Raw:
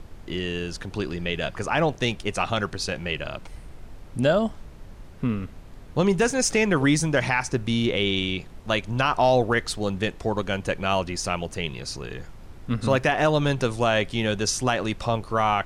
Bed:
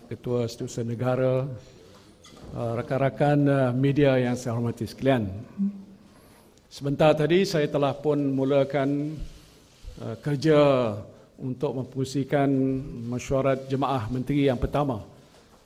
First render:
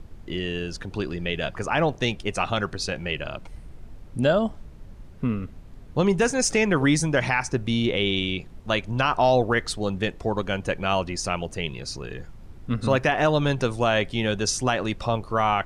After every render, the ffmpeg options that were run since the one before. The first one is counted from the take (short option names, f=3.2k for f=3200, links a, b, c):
-af "afftdn=nr=6:nf=-44"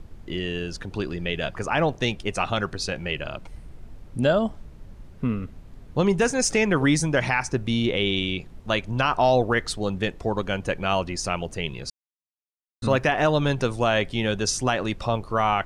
-filter_complex "[0:a]asplit=3[a][b][c];[a]atrim=end=11.9,asetpts=PTS-STARTPTS,afade=t=out:st=11.896:d=0.004:c=hsin[d];[b]atrim=start=11.9:end=12.82,asetpts=PTS-STARTPTS,volume=0[e];[c]atrim=start=12.82,asetpts=PTS-STARTPTS,afade=t=in:d=0.004:c=hsin[f];[d][e][f]concat=n=3:v=0:a=1"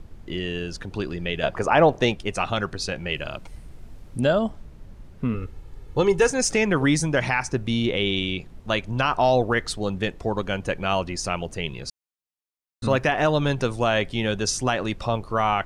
-filter_complex "[0:a]asettb=1/sr,asplit=3[a][b][c];[a]atrim=end=1.434[d];[b]atrim=start=1.43:end=2.14,asetpts=PTS-STARTPTS,afade=t=in:d=0.004:c=qsin,afade=t=out:st=0.706:d=0.004:c=qsin,equalizer=f=610:w=0.54:g=7.5[e];[c]atrim=start=2.136[f];[d][e]acrossfade=d=0.004:c1=hsin:c2=qsin[g];[g][f]acrossfade=d=0.004:c1=qsin:c2=hsin,asettb=1/sr,asplit=3[h][i][j];[h]atrim=end=3.114[k];[i]atrim=start=3.11:end=4.21,asetpts=PTS-STARTPTS,afade=t=in:d=0.004:c=qsin,afade=t=out:st=1.096:d=0.004:c=qsin,highshelf=f=4k:g=5.5[l];[j]atrim=start=4.206[m];[k][l]acrossfade=d=0.004:c1=hsin:c2=qsin[n];[n][m]acrossfade=d=0.004:c1=qsin:c2=hsin,asettb=1/sr,asplit=3[o][p][q];[o]atrim=end=5.344[r];[p]atrim=start=5.34:end=6.3,asetpts=PTS-STARTPTS,afade=t=in:d=0.004:c=qsin,afade=t=out:st=0.956:d=0.004:c=qsin,aecho=1:1:2.3:0.65,atrim=end_sample=42336[s];[q]atrim=start=6.296[t];[r][s]acrossfade=d=0.004:c1=hsin:c2=qsin[u];[u][t]acrossfade=d=0.004:c1=qsin:c2=hsin"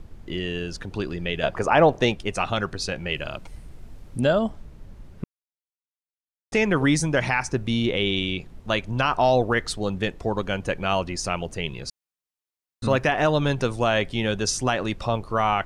-filter_complex "[0:a]asplit=3[a][b][c];[a]atrim=end=5.24,asetpts=PTS-STARTPTS,afade=t=out:st=5.236:d=0.004:c=hsin[d];[b]atrim=start=5.24:end=6.52,asetpts=PTS-STARTPTS,volume=0[e];[c]atrim=start=6.52,asetpts=PTS-STARTPTS,afade=t=in:d=0.004:c=hsin[f];[d][e][f]concat=n=3:v=0:a=1"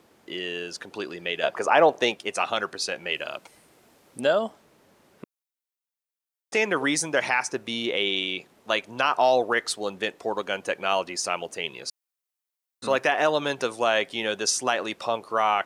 -af "highpass=390,highshelf=f=9.5k:g=6.5"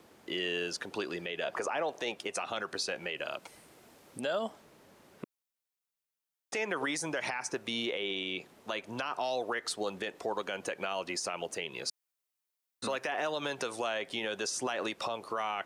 -filter_complex "[0:a]acrossover=split=450|1700[a][b][c];[a]acompressor=threshold=-35dB:ratio=4[d];[b]acompressor=threshold=-27dB:ratio=4[e];[c]acompressor=threshold=-29dB:ratio=4[f];[d][e][f]amix=inputs=3:normalize=0,alimiter=limit=-23.5dB:level=0:latency=1:release=118"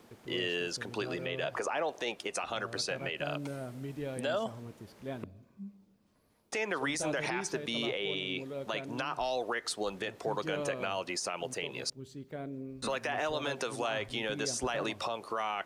-filter_complex "[1:a]volume=-18.5dB[a];[0:a][a]amix=inputs=2:normalize=0"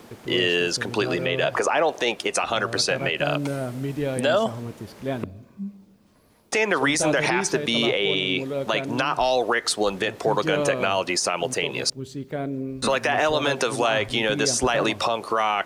-af "volume=12dB"